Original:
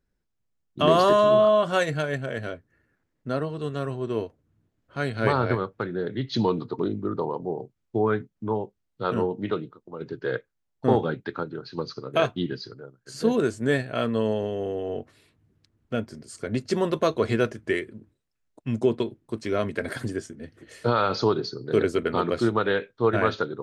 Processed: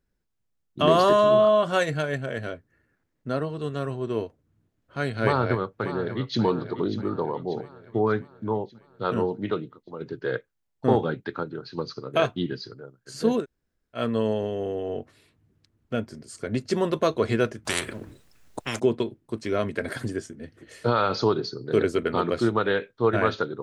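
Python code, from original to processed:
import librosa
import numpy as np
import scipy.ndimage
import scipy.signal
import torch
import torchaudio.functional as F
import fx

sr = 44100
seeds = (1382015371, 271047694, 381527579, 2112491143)

y = fx.echo_throw(x, sr, start_s=5.24, length_s=1.18, ms=590, feedback_pct=55, wet_db=-11.5)
y = fx.spectral_comp(y, sr, ratio=4.0, at=(17.65, 18.8))
y = fx.edit(y, sr, fx.room_tone_fill(start_s=13.41, length_s=0.57, crossfade_s=0.1), tone=tone)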